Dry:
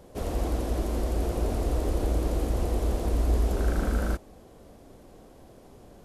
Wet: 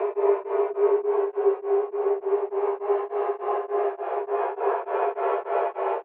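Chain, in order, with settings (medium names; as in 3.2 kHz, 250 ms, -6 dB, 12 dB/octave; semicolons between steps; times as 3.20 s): compressor with a negative ratio -31 dBFS, ratio -1; frequency shift +240 Hz; chorus voices 2, 0.71 Hz, delay 29 ms, depth 2.1 ms; Paulstretch 21×, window 0.10 s, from 1.10 s; doubling 14 ms -2.5 dB; on a send: delay 97 ms -4.5 dB; on the sum: mistuned SSB +110 Hz 180–2400 Hz; tremolo of two beating tones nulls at 3.4 Hz; trim +6.5 dB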